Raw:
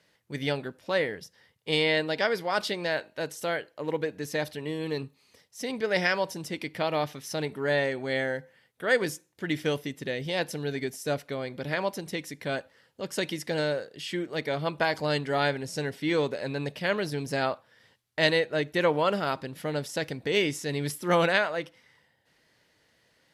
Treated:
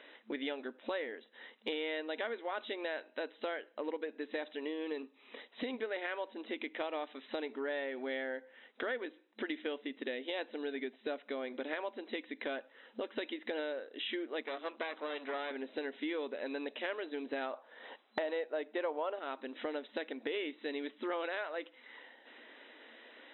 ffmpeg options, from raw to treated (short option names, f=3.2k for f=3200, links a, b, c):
-filter_complex "[0:a]asettb=1/sr,asplit=3[a][b][c];[a]atrim=end=14.424[d];[b]atrim=start=14.42:end=15.51,asetpts=PTS-STARTPTS,afade=t=in:d=0.004:c=qsin,afade=t=out:st=1.086:d=0.004:c=qsin,aeval=exprs='max(val(0),0)':c=same[e];[c]atrim=start=15.506[f];[d][e]acrossfade=d=0.004:c1=hsin:c2=qsin[g];[g][f]acrossfade=d=0.004:c1=qsin:c2=hsin,asettb=1/sr,asplit=3[h][i][j];[h]atrim=end=17.534[k];[i]atrim=start=17.53:end=19.19,asetpts=PTS-STARTPTS,afade=t=in:d=0.004:c=qsin,afade=t=out:st=1.656:d=0.004:c=qsin,equalizer=f=720:t=o:w=1.7:g=10[l];[j]atrim=start=19.186[m];[k][l]acrossfade=d=0.004:c1=hsin:c2=qsin[n];[n][m]acrossfade=d=0.004:c1=qsin:c2=hsin,deesser=0.75,afftfilt=real='re*between(b*sr/4096,220,4000)':imag='im*between(b*sr/4096,220,4000)':win_size=4096:overlap=0.75,acompressor=threshold=-51dB:ratio=5,volume=12dB"